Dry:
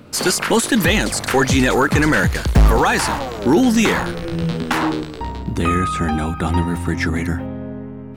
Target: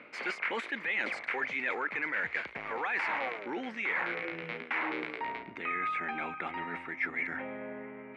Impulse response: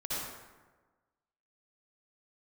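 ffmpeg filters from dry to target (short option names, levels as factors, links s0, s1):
-af "lowpass=f=2200:t=q:w=7.1,areverse,acompressor=threshold=0.0708:ratio=12,areverse,highpass=410,volume=0.501"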